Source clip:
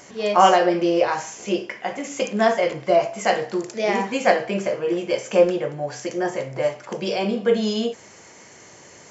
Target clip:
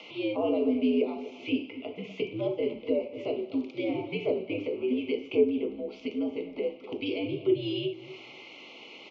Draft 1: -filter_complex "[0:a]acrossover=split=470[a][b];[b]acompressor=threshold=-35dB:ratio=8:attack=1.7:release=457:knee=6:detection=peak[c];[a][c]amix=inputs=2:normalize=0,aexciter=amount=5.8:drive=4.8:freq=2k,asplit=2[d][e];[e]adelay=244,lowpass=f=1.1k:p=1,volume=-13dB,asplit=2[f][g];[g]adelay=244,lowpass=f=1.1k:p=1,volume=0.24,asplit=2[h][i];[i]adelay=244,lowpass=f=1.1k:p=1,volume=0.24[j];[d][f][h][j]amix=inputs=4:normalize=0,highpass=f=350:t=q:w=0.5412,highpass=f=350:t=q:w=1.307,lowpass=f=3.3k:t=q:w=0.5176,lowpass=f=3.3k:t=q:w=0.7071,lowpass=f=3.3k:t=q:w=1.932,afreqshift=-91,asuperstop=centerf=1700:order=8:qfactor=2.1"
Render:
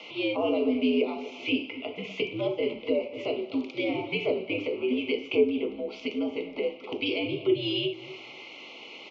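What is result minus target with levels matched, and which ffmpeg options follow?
compressor: peak gain reduction -7.5 dB
-filter_complex "[0:a]acrossover=split=470[a][b];[b]acompressor=threshold=-43.5dB:ratio=8:attack=1.7:release=457:knee=6:detection=peak[c];[a][c]amix=inputs=2:normalize=0,aexciter=amount=5.8:drive=4.8:freq=2k,asplit=2[d][e];[e]adelay=244,lowpass=f=1.1k:p=1,volume=-13dB,asplit=2[f][g];[g]adelay=244,lowpass=f=1.1k:p=1,volume=0.24,asplit=2[h][i];[i]adelay=244,lowpass=f=1.1k:p=1,volume=0.24[j];[d][f][h][j]amix=inputs=4:normalize=0,highpass=f=350:t=q:w=0.5412,highpass=f=350:t=q:w=1.307,lowpass=f=3.3k:t=q:w=0.5176,lowpass=f=3.3k:t=q:w=0.7071,lowpass=f=3.3k:t=q:w=1.932,afreqshift=-91,asuperstop=centerf=1700:order=8:qfactor=2.1"

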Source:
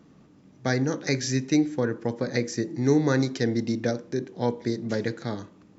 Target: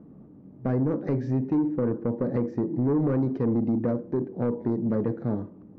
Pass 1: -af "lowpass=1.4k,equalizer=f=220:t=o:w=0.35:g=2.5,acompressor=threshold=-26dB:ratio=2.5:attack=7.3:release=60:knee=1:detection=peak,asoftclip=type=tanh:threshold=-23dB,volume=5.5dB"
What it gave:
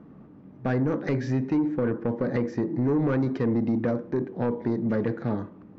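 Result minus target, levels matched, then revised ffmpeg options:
1000 Hz band +2.5 dB
-af "lowpass=650,equalizer=f=220:t=o:w=0.35:g=2.5,acompressor=threshold=-26dB:ratio=2.5:attack=7.3:release=60:knee=1:detection=peak,asoftclip=type=tanh:threshold=-23dB,volume=5.5dB"

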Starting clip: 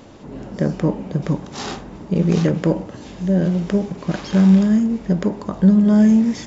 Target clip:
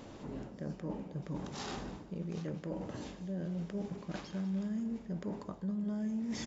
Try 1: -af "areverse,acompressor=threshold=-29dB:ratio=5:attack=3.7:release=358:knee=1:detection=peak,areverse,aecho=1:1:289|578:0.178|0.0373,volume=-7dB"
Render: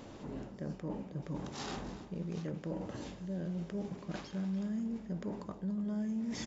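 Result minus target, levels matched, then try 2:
echo 90 ms late
-af "areverse,acompressor=threshold=-29dB:ratio=5:attack=3.7:release=358:knee=1:detection=peak,areverse,aecho=1:1:199|398:0.178|0.0373,volume=-7dB"

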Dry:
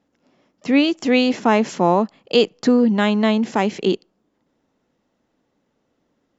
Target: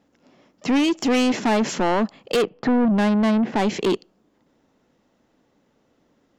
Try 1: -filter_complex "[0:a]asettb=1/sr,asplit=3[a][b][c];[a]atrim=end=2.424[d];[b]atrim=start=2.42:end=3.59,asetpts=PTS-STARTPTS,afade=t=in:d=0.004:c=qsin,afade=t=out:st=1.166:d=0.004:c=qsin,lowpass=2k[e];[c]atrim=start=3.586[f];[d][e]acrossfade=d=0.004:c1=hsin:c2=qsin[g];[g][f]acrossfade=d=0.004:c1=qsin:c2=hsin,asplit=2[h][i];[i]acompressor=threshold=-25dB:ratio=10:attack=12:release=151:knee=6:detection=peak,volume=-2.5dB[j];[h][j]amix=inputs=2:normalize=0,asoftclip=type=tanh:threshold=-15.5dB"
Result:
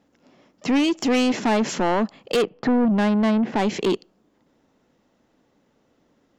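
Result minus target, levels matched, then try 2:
compressor: peak gain reduction +7.5 dB
-filter_complex "[0:a]asettb=1/sr,asplit=3[a][b][c];[a]atrim=end=2.424[d];[b]atrim=start=2.42:end=3.59,asetpts=PTS-STARTPTS,afade=t=in:d=0.004:c=qsin,afade=t=out:st=1.166:d=0.004:c=qsin,lowpass=2k[e];[c]atrim=start=3.586[f];[d][e]acrossfade=d=0.004:c1=hsin:c2=qsin[g];[g][f]acrossfade=d=0.004:c1=qsin:c2=hsin,asplit=2[h][i];[i]acompressor=threshold=-16.5dB:ratio=10:attack=12:release=151:knee=6:detection=peak,volume=-2.5dB[j];[h][j]amix=inputs=2:normalize=0,asoftclip=type=tanh:threshold=-15.5dB"

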